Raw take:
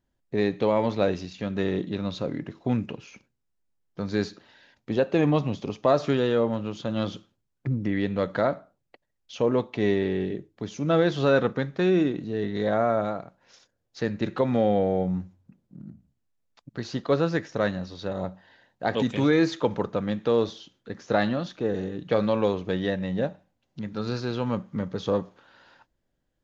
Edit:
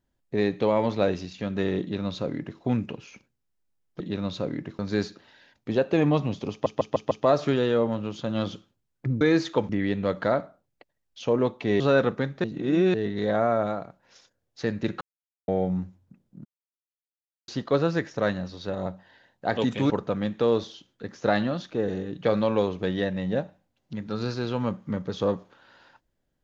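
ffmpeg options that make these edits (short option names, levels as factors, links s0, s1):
-filter_complex "[0:a]asplit=17[s0][s1][s2][s3][s4][s5][s6][s7][s8][s9][s10][s11][s12][s13][s14][s15][s16];[s0]atrim=end=4.002[s17];[s1]atrim=start=1.808:end=2.602[s18];[s2]atrim=start=3.998:end=5.872[s19];[s3]atrim=start=5.718:end=5.872[s20];[s4]atrim=start=5.718:end=5.872[s21];[s5]atrim=start=5.718:end=5.872[s22];[s6]atrim=start=5.718:end=7.822[s23];[s7]atrim=start=19.278:end=19.762[s24];[s8]atrim=start=7.818:end=9.932[s25];[s9]atrim=start=11.178:end=11.822[s26];[s10]atrim=start=11.818:end=12.322,asetpts=PTS-STARTPTS,areverse[s27];[s11]atrim=start=12.318:end=14.39,asetpts=PTS-STARTPTS,afade=t=out:st=2.068:d=0.004:c=hsin[s28];[s12]atrim=start=14.39:end=14.86,asetpts=PTS-STARTPTS,volume=0[s29];[s13]atrim=start=14.86:end=15.83,asetpts=PTS-STARTPTS,afade=t=in:d=0.004:c=hsin,afade=t=out:st=0.966:d=0.004:c=hsin[s30];[s14]atrim=start=15.83:end=16.86,asetpts=PTS-STARTPTS,volume=0[s31];[s15]atrim=start=16.86:end=19.282,asetpts=PTS-STARTPTS,afade=t=in:d=0.004:c=hsin[s32];[s16]atrim=start=19.758[s33];[s17][s18]acrossfade=d=0.004:c1=hsin:c2=hsin[s34];[s34][s19]acrossfade=d=0.004:c1=hsin:c2=hsin[s35];[s35][s20]acrossfade=d=0.004:c1=hsin:c2=hsin[s36];[s36][s21]acrossfade=d=0.004:c1=hsin:c2=hsin[s37];[s37][s22]acrossfade=d=0.004:c1=hsin:c2=hsin[s38];[s38][s23]acrossfade=d=0.004:c1=hsin:c2=hsin[s39];[s39][s24]acrossfade=d=0.004:c1=hsin:c2=hsin[s40];[s40][s25]acrossfade=d=0.004:c1=hsin:c2=hsin[s41];[s41][s26]acrossfade=d=0.004:c1=hsin:c2=hsin[s42];[s42][s27]acrossfade=d=0.004:c1=hsin:c2=hsin[s43];[s28][s29][s30][s31][s32]concat=n=5:v=0:a=1[s44];[s43][s44]acrossfade=d=0.004:c1=hsin:c2=hsin[s45];[s45][s33]acrossfade=d=0.004:c1=hsin:c2=hsin"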